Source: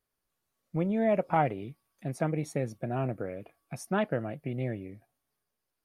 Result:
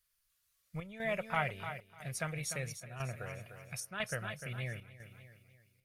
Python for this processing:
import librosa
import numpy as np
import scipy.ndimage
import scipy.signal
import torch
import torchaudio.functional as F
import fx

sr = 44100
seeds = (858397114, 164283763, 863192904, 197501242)

p1 = fx.peak_eq(x, sr, hz=820.0, db=-8.0, octaves=0.65)
p2 = p1 + fx.echo_feedback(p1, sr, ms=299, feedback_pct=40, wet_db=-9.5, dry=0)
p3 = fx.chopper(p2, sr, hz=1.0, depth_pct=60, duty_pct=80)
p4 = fx.tone_stack(p3, sr, knobs='10-0-10')
y = p4 * 10.0 ** (8.0 / 20.0)